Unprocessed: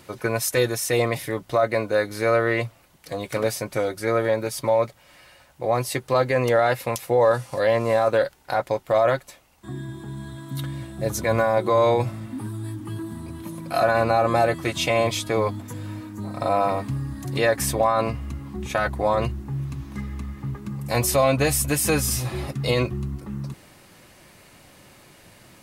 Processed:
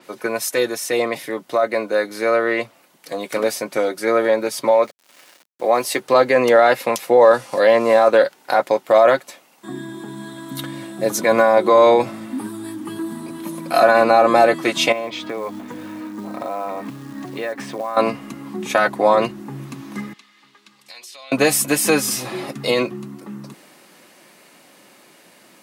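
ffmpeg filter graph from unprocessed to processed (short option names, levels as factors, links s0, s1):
-filter_complex "[0:a]asettb=1/sr,asplit=3[s0][s1][s2];[s0]atrim=end=4.714[s3];[s1]atrim=start=4.71:end=6,asetpts=PTS-STARTPTS,afade=t=in:d=0.004:c=qsin,afade=t=out:st=1.286:d=0.004:c=qsin,highpass=f=240:p=1,aeval=exprs='val(0)*gte(abs(val(0)),0.00473)':c=same[s4];[s2]atrim=start=5.996[s5];[s3][s4]acrossfade=d=0.004:c1=hsin:c2=qsin[s6];[s6][s5]acrossfade=d=0.004:c1=qsin:c2=hsin,asettb=1/sr,asplit=3[s7][s8][s9];[s7]atrim=end=14.924[s10];[s8]atrim=start=14.92:end=17.97,asetpts=PTS-STARTPTS,afade=t=in:d=0.004:c=qsin,afade=t=out:st=3.046:d=0.004:c=qsin,lowpass=3100,acrusher=bits=6:mode=log:mix=0:aa=0.000001,acompressor=threshold=0.0316:ratio=5:attack=3.2:release=140:knee=1:detection=peak[s11];[s9]atrim=start=17.966[s12];[s10][s11]acrossfade=d=0.004:c1=hsin:c2=qsin[s13];[s13][s12]acrossfade=d=0.004:c1=qsin:c2=hsin,asettb=1/sr,asplit=3[s14][s15][s16];[s14]atrim=end=20.134[s17];[s15]atrim=start=20.13:end=21.32,asetpts=PTS-STARTPTS,afade=t=in:d=0.004:c=qsin,afade=t=out:st=1.186:d=0.004:c=qsin,bandpass=f=3800:t=q:w=1.8,acompressor=threshold=0.00708:ratio=8:attack=3.2:release=140:knee=1:detection=peak[s18];[s16]atrim=start=21.316[s19];[s17][s18]acrossfade=d=0.004:c1=hsin:c2=qsin[s20];[s20][s19]acrossfade=d=0.004:c1=qsin:c2=hsin,highpass=f=200:w=0.5412,highpass=f=200:w=1.3066,dynaudnorm=f=600:g=13:m=2,adynamicequalizer=threshold=0.00891:dfrequency=6900:dqfactor=0.7:tfrequency=6900:tqfactor=0.7:attack=5:release=100:ratio=0.375:range=2.5:mode=cutabove:tftype=highshelf,volume=1.26"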